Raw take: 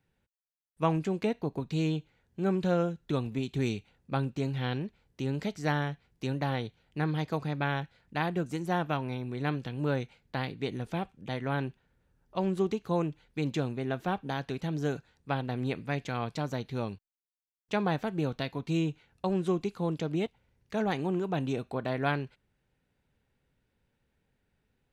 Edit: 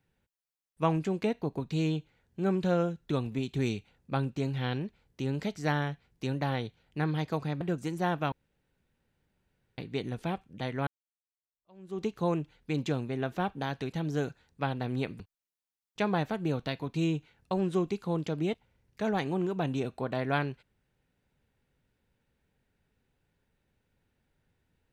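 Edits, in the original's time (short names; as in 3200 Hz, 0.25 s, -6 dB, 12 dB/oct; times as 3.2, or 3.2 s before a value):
7.61–8.29 cut
9–10.46 room tone
11.55–12.73 fade in exponential
15.88–16.93 cut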